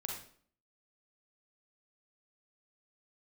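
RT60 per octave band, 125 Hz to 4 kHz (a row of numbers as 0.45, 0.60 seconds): 0.55, 0.65, 0.55, 0.50, 0.45, 0.45 seconds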